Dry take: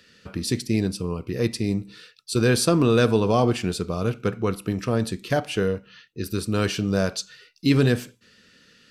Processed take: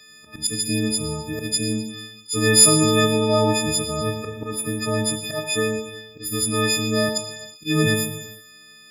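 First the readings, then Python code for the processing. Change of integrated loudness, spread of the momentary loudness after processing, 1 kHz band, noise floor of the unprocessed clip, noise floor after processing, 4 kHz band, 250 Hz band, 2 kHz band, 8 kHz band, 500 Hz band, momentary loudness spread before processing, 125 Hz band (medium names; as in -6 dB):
+3.5 dB, 14 LU, +2.0 dB, -57 dBFS, -48 dBFS, +8.5 dB, 0.0 dB, +4.5 dB, +13.5 dB, 0.0 dB, 14 LU, -1.5 dB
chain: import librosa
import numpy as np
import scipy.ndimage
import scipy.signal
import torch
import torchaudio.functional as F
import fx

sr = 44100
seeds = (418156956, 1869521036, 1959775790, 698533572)

y = fx.freq_snap(x, sr, grid_st=6)
y = fx.auto_swell(y, sr, attack_ms=124.0)
y = fx.rev_gated(y, sr, seeds[0], gate_ms=480, shape='falling', drr_db=5.0)
y = F.gain(torch.from_numpy(y), -2.0).numpy()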